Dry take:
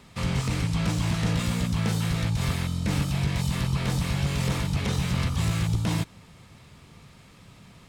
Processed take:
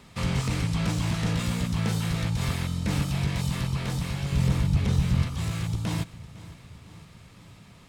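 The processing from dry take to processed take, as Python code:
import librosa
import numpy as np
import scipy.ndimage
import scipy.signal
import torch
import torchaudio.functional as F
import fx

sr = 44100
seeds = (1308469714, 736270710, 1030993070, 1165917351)

y = fx.low_shelf(x, sr, hz=230.0, db=11.5, at=(4.32, 5.23))
y = fx.rider(y, sr, range_db=10, speed_s=2.0)
y = fx.echo_feedback(y, sr, ms=506, feedback_pct=59, wet_db=-19)
y = F.gain(torch.from_numpy(y), -3.5).numpy()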